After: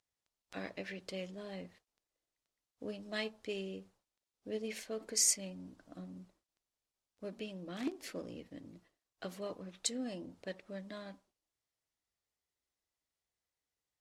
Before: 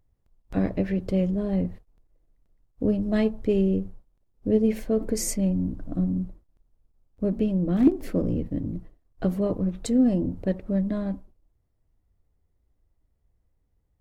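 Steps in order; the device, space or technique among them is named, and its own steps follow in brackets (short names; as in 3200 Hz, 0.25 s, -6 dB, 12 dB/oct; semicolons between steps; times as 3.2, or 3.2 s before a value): piezo pickup straight into a mixer (LPF 5600 Hz 12 dB/oct; differentiator); gain +8 dB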